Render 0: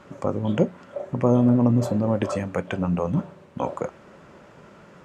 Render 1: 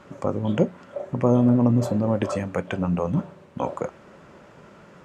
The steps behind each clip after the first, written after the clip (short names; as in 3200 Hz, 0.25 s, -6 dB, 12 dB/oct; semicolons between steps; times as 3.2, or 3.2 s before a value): nothing audible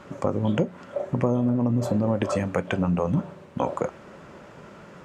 compressor 6:1, threshold -22 dBFS, peak gain reduction 8.5 dB; gain +3 dB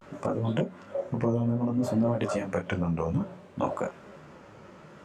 vibrato 0.6 Hz 86 cents; detuned doubles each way 19 cents